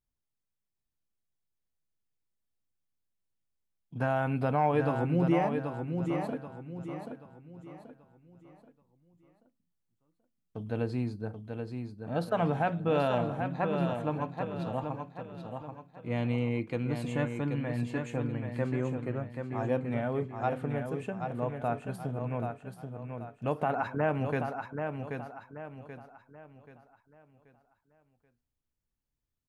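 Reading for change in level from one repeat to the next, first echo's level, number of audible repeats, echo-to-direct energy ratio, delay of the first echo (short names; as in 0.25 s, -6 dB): -8.5 dB, -6.0 dB, 4, -5.5 dB, 0.782 s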